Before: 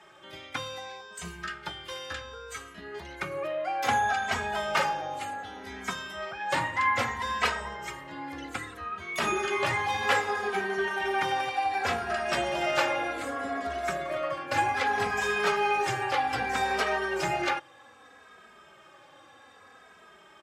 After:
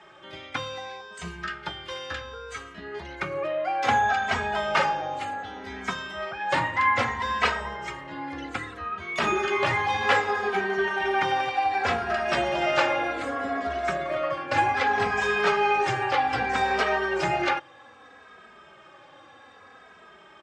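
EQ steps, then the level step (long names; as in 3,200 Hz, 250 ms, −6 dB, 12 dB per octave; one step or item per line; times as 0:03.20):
high-frequency loss of the air 87 metres
+4.0 dB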